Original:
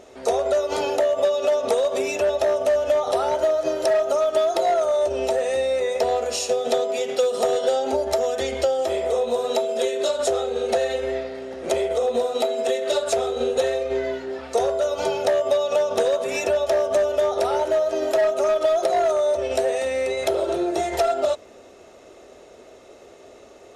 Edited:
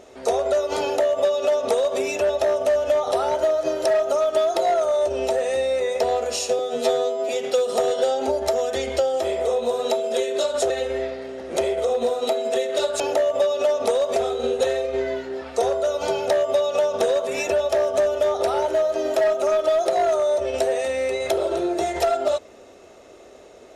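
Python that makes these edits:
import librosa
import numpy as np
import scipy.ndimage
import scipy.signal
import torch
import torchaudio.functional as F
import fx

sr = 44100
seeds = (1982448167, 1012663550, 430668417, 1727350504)

y = fx.edit(x, sr, fx.duplicate(start_s=0.83, length_s=1.16, to_s=13.13),
    fx.stretch_span(start_s=6.59, length_s=0.35, factor=2.0),
    fx.cut(start_s=10.35, length_s=0.48), tone=tone)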